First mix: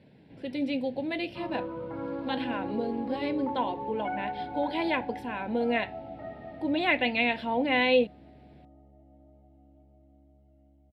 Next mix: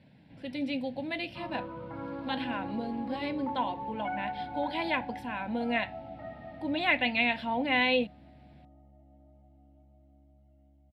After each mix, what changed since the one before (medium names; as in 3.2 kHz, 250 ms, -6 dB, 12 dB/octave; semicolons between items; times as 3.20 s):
master: add peaking EQ 410 Hz -12.5 dB 0.59 oct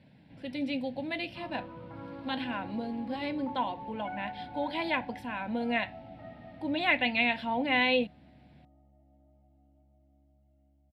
background -5.0 dB